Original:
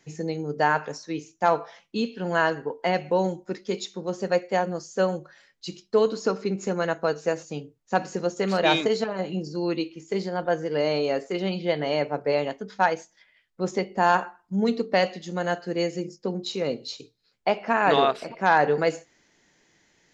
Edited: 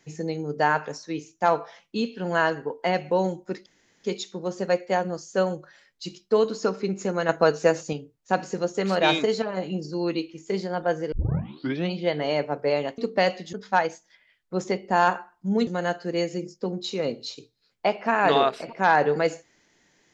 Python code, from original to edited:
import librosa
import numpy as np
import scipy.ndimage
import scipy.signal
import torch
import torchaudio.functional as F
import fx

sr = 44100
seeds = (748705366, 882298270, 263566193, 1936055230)

y = fx.edit(x, sr, fx.insert_room_tone(at_s=3.66, length_s=0.38),
    fx.clip_gain(start_s=6.91, length_s=0.64, db=5.5),
    fx.tape_start(start_s=10.74, length_s=0.78),
    fx.move(start_s=14.74, length_s=0.55, to_s=12.6), tone=tone)